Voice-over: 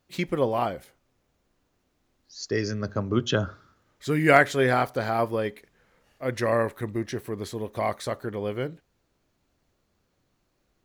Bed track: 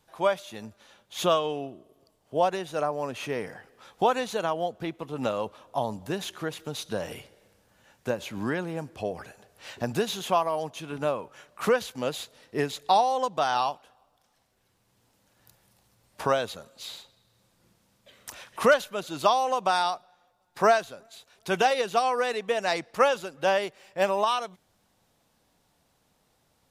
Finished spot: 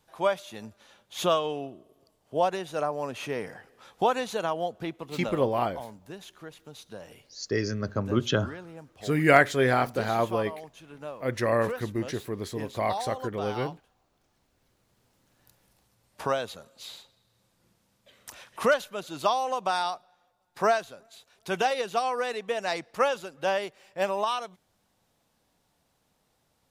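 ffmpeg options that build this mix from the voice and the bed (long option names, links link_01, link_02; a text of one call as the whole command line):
ffmpeg -i stem1.wav -i stem2.wav -filter_complex "[0:a]adelay=5000,volume=-1dB[link_01];[1:a]volume=7.5dB,afade=type=out:start_time=4.89:duration=0.66:silence=0.298538,afade=type=in:start_time=13.99:duration=0.65:silence=0.375837[link_02];[link_01][link_02]amix=inputs=2:normalize=0" out.wav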